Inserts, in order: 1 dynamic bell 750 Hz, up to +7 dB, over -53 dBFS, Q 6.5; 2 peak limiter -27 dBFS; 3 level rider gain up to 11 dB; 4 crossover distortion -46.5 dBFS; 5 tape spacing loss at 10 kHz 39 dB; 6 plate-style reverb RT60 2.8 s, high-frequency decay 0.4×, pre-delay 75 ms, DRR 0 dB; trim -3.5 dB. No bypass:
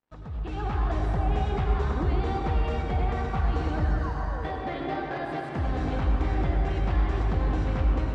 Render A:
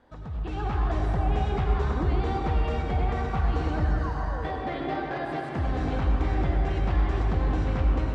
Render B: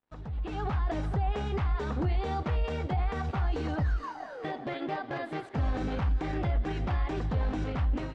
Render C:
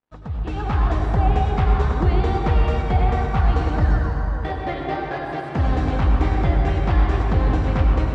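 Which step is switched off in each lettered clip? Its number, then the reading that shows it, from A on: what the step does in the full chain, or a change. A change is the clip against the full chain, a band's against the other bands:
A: 4, distortion -26 dB; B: 6, loudness change -3.5 LU; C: 2, mean gain reduction 5.0 dB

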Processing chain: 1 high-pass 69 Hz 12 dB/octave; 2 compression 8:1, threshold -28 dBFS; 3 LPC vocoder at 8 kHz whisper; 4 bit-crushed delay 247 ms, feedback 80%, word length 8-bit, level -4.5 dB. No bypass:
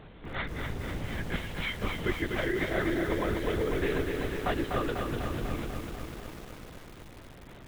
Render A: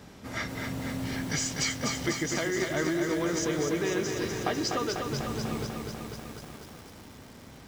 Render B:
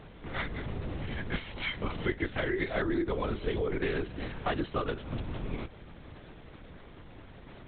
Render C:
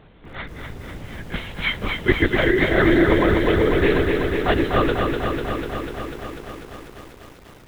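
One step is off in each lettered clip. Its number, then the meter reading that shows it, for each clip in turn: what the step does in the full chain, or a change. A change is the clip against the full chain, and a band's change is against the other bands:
3, 8 kHz band +16.5 dB; 4, momentary loudness spread change +3 LU; 2, mean gain reduction 5.0 dB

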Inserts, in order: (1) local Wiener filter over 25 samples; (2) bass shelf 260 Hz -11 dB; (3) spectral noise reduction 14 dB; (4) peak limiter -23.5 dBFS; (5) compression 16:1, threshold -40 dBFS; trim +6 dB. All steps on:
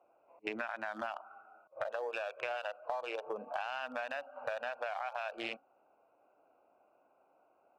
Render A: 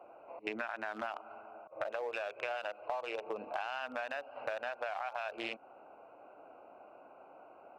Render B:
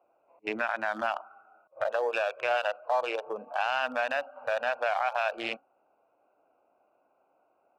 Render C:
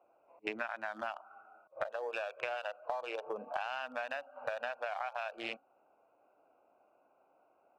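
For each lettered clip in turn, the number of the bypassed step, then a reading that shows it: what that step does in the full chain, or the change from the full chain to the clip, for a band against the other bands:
3, momentary loudness spread change +13 LU; 5, mean gain reduction 7.0 dB; 4, mean gain reduction 1.5 dB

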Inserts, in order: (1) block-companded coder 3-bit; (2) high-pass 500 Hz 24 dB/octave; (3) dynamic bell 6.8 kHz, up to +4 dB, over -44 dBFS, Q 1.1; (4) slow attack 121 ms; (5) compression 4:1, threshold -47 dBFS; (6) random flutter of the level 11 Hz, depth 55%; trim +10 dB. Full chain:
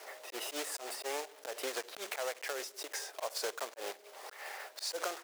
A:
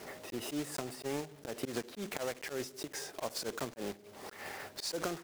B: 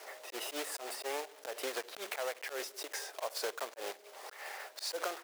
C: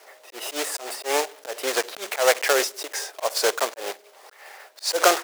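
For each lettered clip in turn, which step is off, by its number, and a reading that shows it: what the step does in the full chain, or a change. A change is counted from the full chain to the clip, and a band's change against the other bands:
2, 250 Hz band +14.0 dB; 3, 8 kHz band -2.0 dB; 5, mean gain reduction 10.5 dB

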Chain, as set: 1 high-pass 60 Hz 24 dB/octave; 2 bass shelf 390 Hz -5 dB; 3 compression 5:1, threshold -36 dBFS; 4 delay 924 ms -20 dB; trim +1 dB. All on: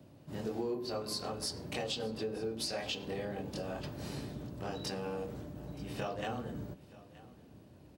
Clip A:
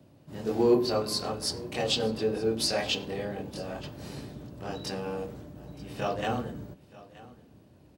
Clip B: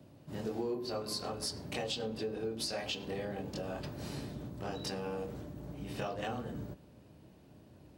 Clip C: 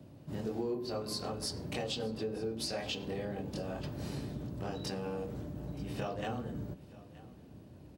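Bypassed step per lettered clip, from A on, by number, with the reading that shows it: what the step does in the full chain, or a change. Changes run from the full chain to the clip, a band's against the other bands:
3, crest factor change +2.0 dB; 4, momentary loudness spread change +2 LU; 2, 125 Hz band +3.5 dB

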